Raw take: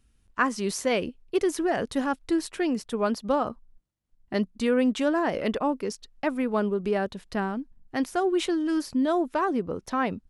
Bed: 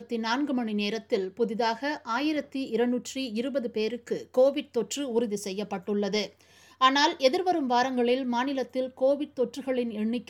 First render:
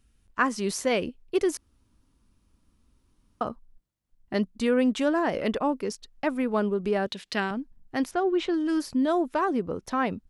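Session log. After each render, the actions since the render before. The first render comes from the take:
0:01.57–0:03.41: fill with room tone
0:07.07–0:07.51: meter weighting curve D
0:08.11–0:08.54: high-frequency loss of the air 150 metres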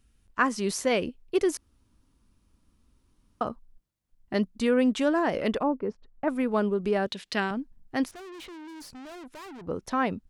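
0:05.63–0:06.28: low-pass filter 1,200 Hz
0:08.08–0:09.67: tube saturation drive 42 dB, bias 0.6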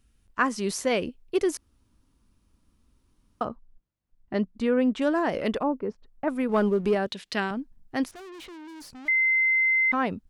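0:03.45–0:05.02: low-pass filter 2,100 Hz 6 dB per octave
0:06.49–0:06.95: leveller curve on the samples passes 1
0:09.08–0:09.92: beep over 2,070 Hz −19 dBFS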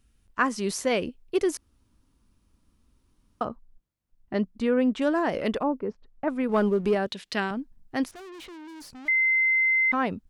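0:05.82–0:06.44: high-frequency loss of the air 65 metres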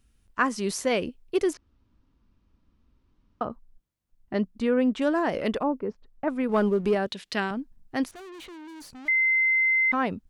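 0:01.53–0:03.50: high-frequency loss of the air 180 metres
0:08.07–0:08.99: notch filter 5,200 Hz, Q 14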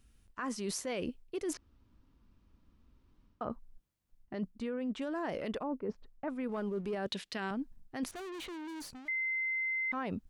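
brickwall limiter −20 dBFS, peak gain reduction 10.5 dB
reversed playback
downward compressor, threshold −34 dBFS, peak gain reduction 11 dB
reversed playback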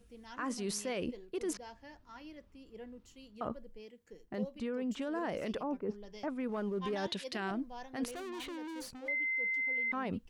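mix in bed −23 dB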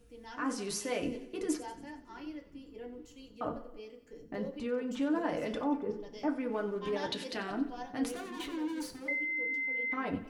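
echo with a time of its own for lows and highs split 330 Hz, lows 749 ms, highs 92 ms, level −15 dB
feedback delay network reverb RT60 0.31 s, low-frequency decay 0.95×, high-frequency decay 0.55×, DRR 1.5 dB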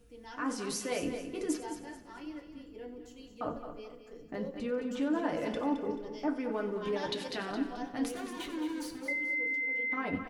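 repeating echo 217 ms, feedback 33%, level −9.5 dB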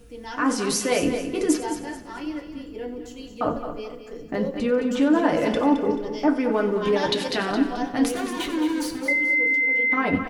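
level +12 dB

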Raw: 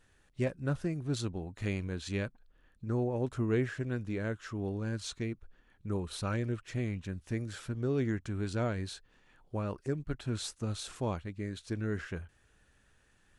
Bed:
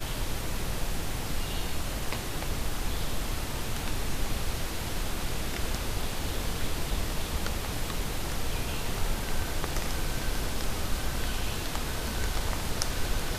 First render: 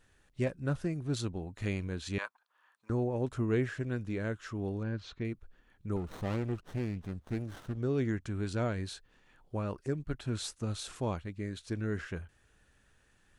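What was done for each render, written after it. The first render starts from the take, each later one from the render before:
0:02.18–0:02.90: high-pass with resonance 1,000 Hz, resonance Q 3.7
0:04.83–0:05.25: high-frequency loss of the air 240 metres
0:05.96–0:07.78: windowed peak hold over 17 samples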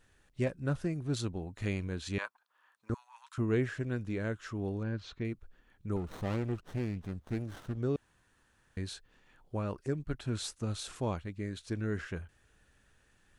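0:02.94–0:03.38: Chebyshev high-pass filter 960 Hz, order 6
0:07.96–0:08.77: fill with room tone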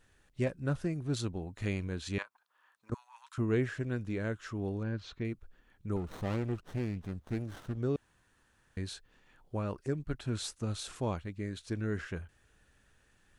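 0:02.22–0:02.92: downward compressor 10 to 1, threshold −46 dBFS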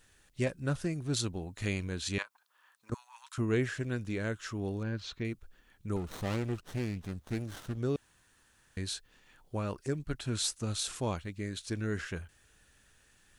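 high-shelf EQ 2,700 Hz +9.5 dB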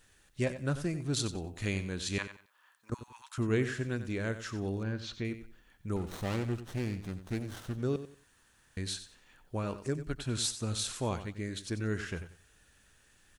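repeating echo 92 ms, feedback 24%, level −12 dB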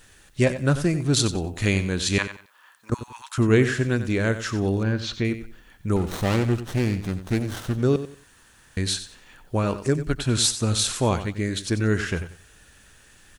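level +11.5 dB

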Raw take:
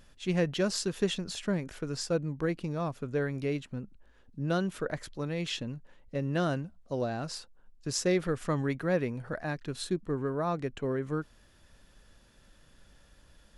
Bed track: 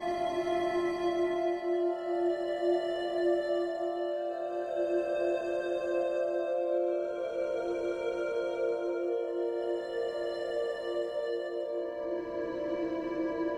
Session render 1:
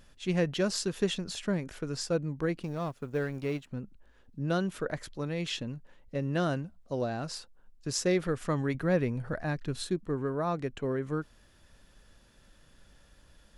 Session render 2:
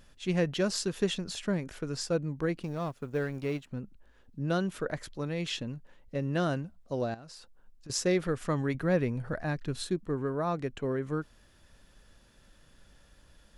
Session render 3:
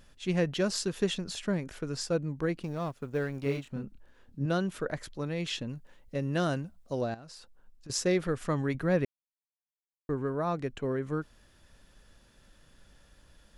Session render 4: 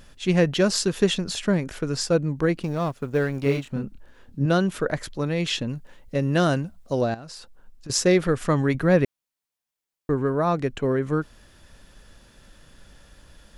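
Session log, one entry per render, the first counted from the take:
0:02.63–0:03.67: mu-law and A-law mismatch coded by A; 0:08.74–0:09.83: low-shelf EQ 150 Hz +8 dB
0:07.14–0:07.90: downward compressor 8 to 1, threshold −45 dBFS
0:03.43–0:04.46: double-tracking delay 29 ms −3 dB; 0:05.69–0:07.01: high-shelf EQ 5,000 Hz +6.5 dB; 0:09.05–0:10.09: silence
level +8.5 dB

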